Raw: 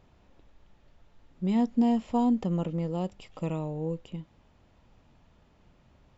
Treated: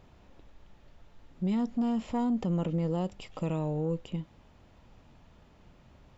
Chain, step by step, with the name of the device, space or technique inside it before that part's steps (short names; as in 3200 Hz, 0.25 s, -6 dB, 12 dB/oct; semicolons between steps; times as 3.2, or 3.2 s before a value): soft clipper into limiter (soft clip -19 dBFS, distortion -19 dB; limiter -27 dBFS, peak gain reduction 7 dB); gain +3.5 dB